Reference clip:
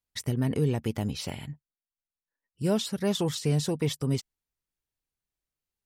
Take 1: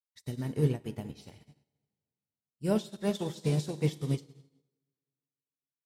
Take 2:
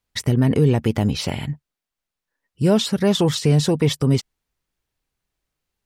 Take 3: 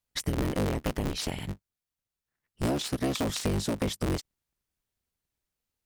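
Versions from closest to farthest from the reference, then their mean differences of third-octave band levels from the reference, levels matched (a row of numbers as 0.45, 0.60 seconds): 2, 1, 3; 2.0, 6.5, 8.5 decibels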